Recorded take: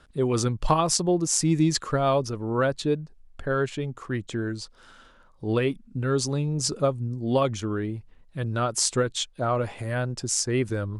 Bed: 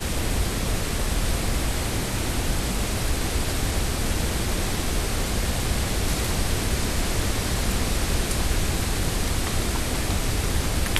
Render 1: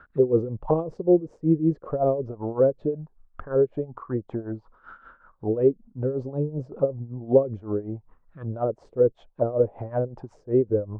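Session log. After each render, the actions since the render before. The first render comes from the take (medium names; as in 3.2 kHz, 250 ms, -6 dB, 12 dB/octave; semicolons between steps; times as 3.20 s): tremolo 5.3 Hz, depth 81%; touch-sensitive low-pass 470–1500 Hz down, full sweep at -24.5 dBFS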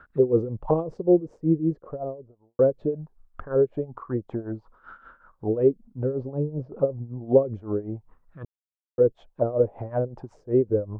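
1.24–2.59 s: studio fade out; 6.12–6.80 s: distance through air 220 m; 8.45–8.98 s: mute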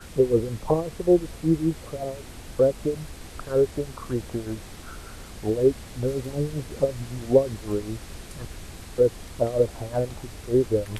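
add bed -16 dB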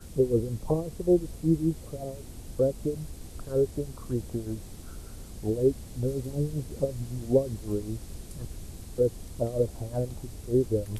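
peaking EQ 1.7 kHz -13.5 dB 3 oct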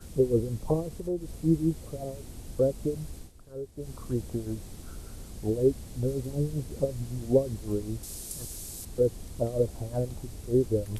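0.88–1.43 s: compression 2:1, threshold -34 dBFS; 3.18–3.90 s: dip -13 dB, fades 0.14 s; 8.03–8.85 s: tone controls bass -5 dB, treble +13 dB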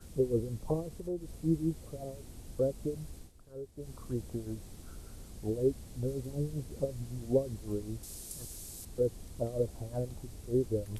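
trim -5.5 dB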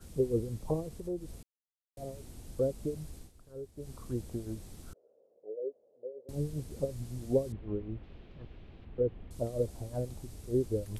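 1.43–1.97 s: mute; 4.93–6.29 s: Butterworth band-pass 520 Hz, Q 3.2; 7.52–9.31 s: steep low-pass 3 kHz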